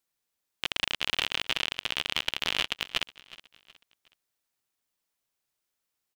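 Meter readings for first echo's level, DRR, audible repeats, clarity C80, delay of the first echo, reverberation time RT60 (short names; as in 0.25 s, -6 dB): -19.0 dB, none, 2, none, 0.368 s, none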